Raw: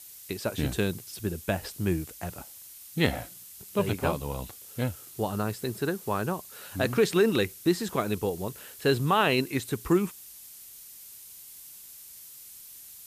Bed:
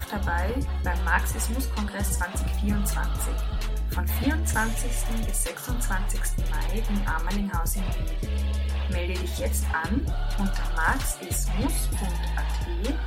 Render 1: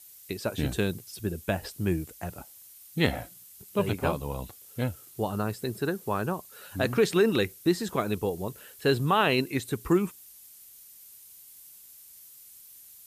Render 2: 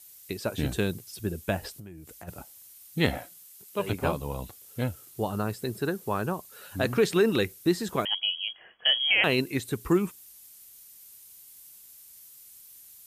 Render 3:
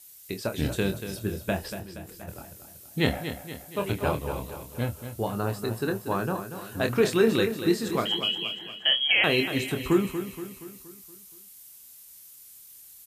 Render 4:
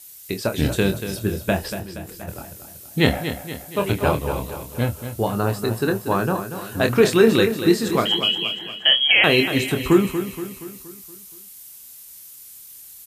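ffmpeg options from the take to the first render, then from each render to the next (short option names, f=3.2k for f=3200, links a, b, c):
-af "afftdn=nr=6:nf=-48"
-filter_complex "[0:a]asplit=3[a][b][c];[a]afade=t=out:st=1.74:d=0.02[d];[b]acompressor=threshold=-40dB:ratio=12:attack=3.2:release=140:knee=1:detection=peak,afade=t=in:st=1.74:d=0.02,afade=t=out:st=2.27:d=0.02[e];[c]afade=t=in:st=2.27:d=0.02[f];[d][e][f]amix=inputs=3:normalize=0,asettb=1/sr,asplit=3[g][h][i];[g]atrim=end=3.184[j];[h]atrim=start=3.18:end=3.9,asetpts=PTS-STARTPTS,afade=t=in:d=0.004:c=qsin,afade=t=out:st=0.716:d=0.004:c=qsin,highpass=f=440:p=1[k];[i]atrim=start=3.896[l];[j][k]acrossfade=d=0.004:c1=hsin:c2=qsin[m];[m][l]acrossfade=d=0.004:c1=qsin:c2=hsin,asettb=1/sr,asplit=3[n][o][p];[n]atrim=end=8.054[q];[o]atrim=start=8.05:end=9.24,asetpts=PTS-STARTPTS,afade=t=in:d=0.004:c=qsin,afade=t=out:st=1.186:d=0.004:c=qsin,lowpass=f=2.9k:t=q:w=0.5098,lowpass=f=2.9k:t=q:w=0.6013,lowpass=f=2.9k:t=q:w=0.9,lowpass=f=2.9k:t=q:w=2.563,afreqshift=-3400[r];[p]atrim=start=9.236[s];[q][r]acrossfade=d=0.004:c1=hsin:c2=qsin[t];[t][s]acrossfade=d=0.004:c1=qsin:c2=hsin"
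-filter_complex "[0:a]asplit=2[a][b];[b]adelay=26,volume=-7dB[c];[a][c]amix=inputs=2:normalize=0,aecho=1:1:236|472|708|944|1180|1416:0.316|0.161|0.0823|0.0419|0.0214|0.0109"
-af "volume=7dB,alimiter=limit=-3dB:level=0:latency=1"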